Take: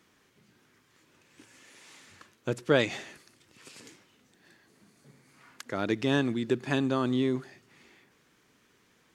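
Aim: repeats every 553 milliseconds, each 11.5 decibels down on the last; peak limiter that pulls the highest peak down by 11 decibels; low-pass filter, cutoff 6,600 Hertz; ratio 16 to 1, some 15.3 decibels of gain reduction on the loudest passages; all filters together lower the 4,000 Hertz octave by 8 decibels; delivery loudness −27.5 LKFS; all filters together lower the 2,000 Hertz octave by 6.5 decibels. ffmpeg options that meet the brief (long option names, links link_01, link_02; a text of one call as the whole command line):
ffmpeg -i in.wav -af "lowpass=6600,equalizer=frequency=2000:width_type=o:gain=-7,equalizer=frequency=4000:width_type=o:gain=-7,acompressor=threshold=-33dB:ratio=16,alimiter=level_in=9dB:limit=-24dB:level=0:latency=1,volume=-9dB,aecho=1:1:553|1106|1659:0.266|0.0718|0.0194,volume=18.5dB" out.wav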